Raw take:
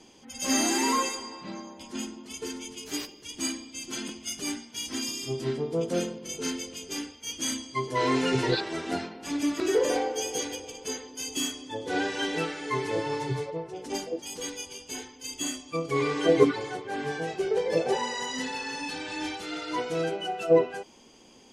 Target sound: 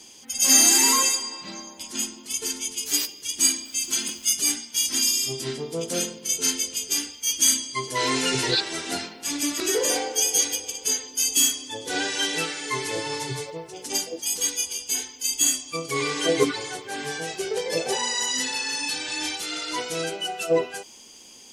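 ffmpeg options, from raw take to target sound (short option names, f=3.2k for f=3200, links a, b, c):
-filter_complex "[0:a]crystalizer=i=6.5:c=0,asettb=1/sr,asplit=3[a][b][c];[a]atrim=end=3.654[d];[b]atrim=start=3.65:end=4.32,asetpts=PTS-STARTPTS,afade=t=in:d=0.004:c=qsin,afade=t=out:st=0.666:d=0.004:c=qsin,aeval=exprs='val(0)*gte(abs(val(0)),0.00841)':c=same[e];[c]atrim=start=4.316[f];[d][e]acrossfade=d=0.004:c1=hsin:c2=qsin[g];[g][f]acrossfade=d=0.004:c1=qsin:c2=hsin,volume=-2.5dB"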